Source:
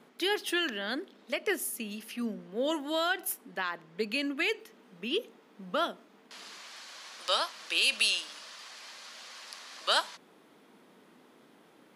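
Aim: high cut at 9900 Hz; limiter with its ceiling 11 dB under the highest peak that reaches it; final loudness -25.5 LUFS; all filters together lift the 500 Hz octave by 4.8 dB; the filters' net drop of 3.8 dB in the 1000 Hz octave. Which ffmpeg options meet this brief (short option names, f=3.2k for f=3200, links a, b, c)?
-af "lowpass=9.9k,equalizer=f=500:t=o:g=8.5,equalizer=f=1k:t=o:g=-8.5,volume=11.5dB,alimiter=limit=-14dB:level=0:latency=1"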